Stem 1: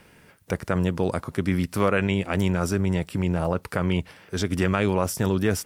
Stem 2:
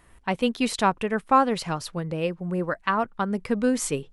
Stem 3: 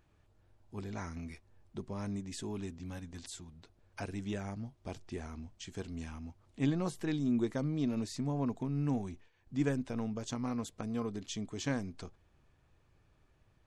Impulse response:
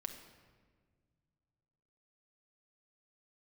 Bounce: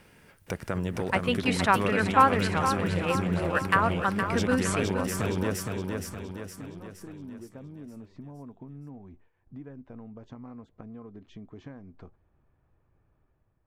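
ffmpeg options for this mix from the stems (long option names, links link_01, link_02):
-filter_complex "[0:a]acompressor=threshold=-33dB:ratio=2,volume=-3.5dB,asplit=2[link_01][link_02];[link_02]volume=-4dB[link_03];[1:a]equalizer=frequency=1800:width=0.79:gain=9.5,adelay=850,volume=-9.5dB,asplit=2[link_04][link_05];[link_05]volume=-8.5dB[link_06];[2:a]lowpass=1500,acompressor=threshold=-41dB:ratio=6,volume=-4dB[link_07];[link_03][link_06]amix=inputs=2:normalize=0,aecho=0:1:466|932|1398|1864|2330|2796|3262:1|0.51|0.26|0.133|0.0677|0.0345|0.0176[link_08];[link_01][link_04][link_07][link_08]amix=inputs=4:normalize=0,dynaudnorm=framelen=100:gausssize=9:maxgain=4dB"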